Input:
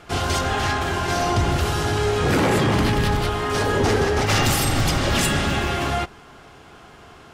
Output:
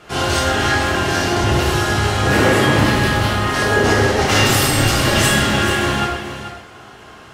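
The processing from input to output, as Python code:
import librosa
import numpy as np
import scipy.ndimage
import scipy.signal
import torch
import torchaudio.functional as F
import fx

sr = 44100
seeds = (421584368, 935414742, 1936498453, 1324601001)

y = fx.low_shelf(x, sr, hz=98.0, db=-7.5)
y = y + 10.0 ** (-10.5 / 20.0) * np.pad(y, (int(436 * sr / 1000.0), 0))[:len(y)]
y = fx.rev_plate(y, sr, seeds[0], rt60_s=0.83, hf_ratio=0.95, predelay_ms=0, drr_db=-4.5)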